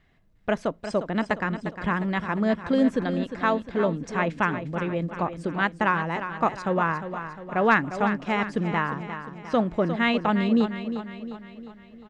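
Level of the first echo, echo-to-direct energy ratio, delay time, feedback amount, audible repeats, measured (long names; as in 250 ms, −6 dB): −10.0 dB, −8.5 dB, 354 ms, 52%, 5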